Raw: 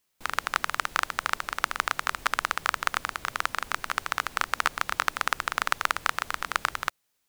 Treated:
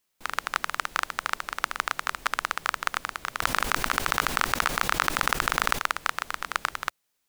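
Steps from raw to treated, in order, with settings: peaking EQ 90 Hz -5.5 dB 0.77 oct; 3.42–5.79 s: level flattener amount 70%; trim -1 dB

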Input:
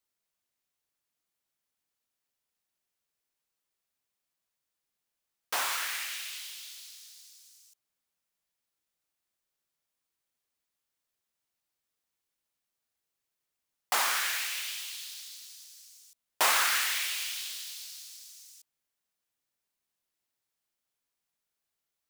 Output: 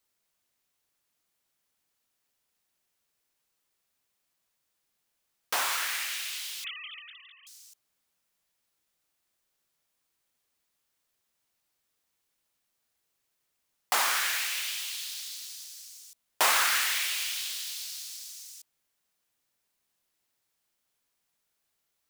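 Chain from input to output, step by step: 6.64–7.47 s: formants replaced by sine waves; in parallel at +1 dB: compression, threshold -42 dBFS, peak gain reduction 19 dB

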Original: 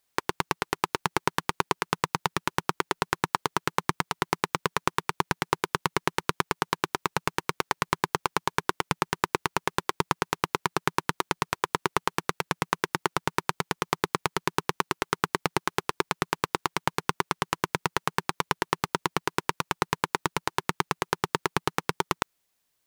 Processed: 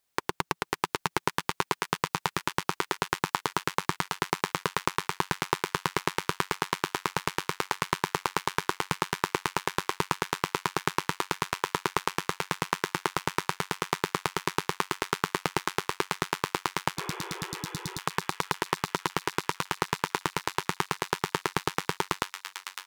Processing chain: spectral replace 17.00–17.96 s, 330–3500 Hz both; on a send: feedback echo behind a high-pass 556 ms, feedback 68%, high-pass 1.9 kHz, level -5 dB; on the sum: trim -2 dB

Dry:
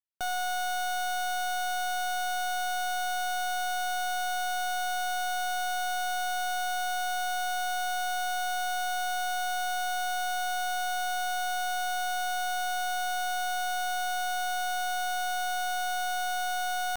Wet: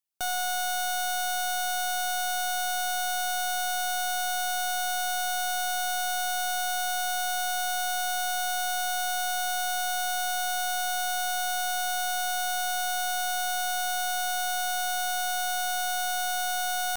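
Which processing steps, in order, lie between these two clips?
treble shelf 3.9 kHz +8.5 dB

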